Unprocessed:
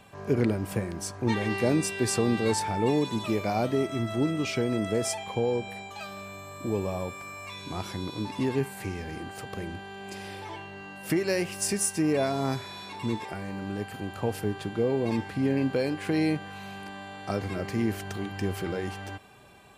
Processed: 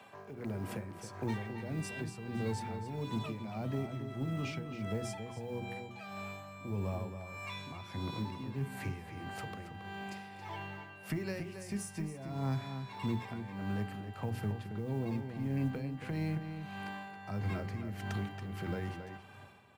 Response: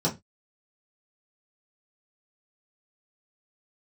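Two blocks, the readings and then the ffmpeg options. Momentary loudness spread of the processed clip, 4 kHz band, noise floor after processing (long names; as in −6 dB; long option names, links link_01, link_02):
8 LU, −11.5 dB, −51 dBFS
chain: -filter_complex "[0:a]highpass=frequency=93:width=0.5412,highpass=frequency=93:width=1.3066,bandreject=frequency=60:width_type=h:width=6,bandreject=frequency=120:width_type=h:width=6,bandreject=frequency=180:width_type=h:width=6,bandreject=frequency=240:width_type=h:width=6,bandreject=frequency=300:width_type=h:width=6,bandreject=frequency=360:width_type=h:width=6,bandreject=frequency=420:width_type=h:width=6,acrossover=split=220[link_01][link_02];[link_02]acompressor=threshold=-35dB:ratio=6[link_03];[link_01][link_03]amix=inputs=2:normalize=0,asoftclip=type=tanh:threshold=-21dB,bass=frequency=250:gain=-7,treble=frequency=4000:gain=-7,acrusher=bits=8:mode=log:mix=0:aa=0.000001,asplit=2[link_04][link_05];[1:a]atrim=start_sample=2205,asetrate=88200,aresample=44100[link_06];[link_05][link_06]afir=irnorm=-1:irlink=0,volume=-24.5dB[link_07];[link_04][link_07]amix=inputs=2:normalize=0,asubboost=boost=4.5:cutoff=170,tremolo=f=1.6:d=0.74,asplit=2[link_08][link_09];[link_09]adelay=274.1,volume=-8dB,highshelf=frequency=4000:gain=-6.17[link_10];[link_08][link_10]amix=inputs=2:normalize=0"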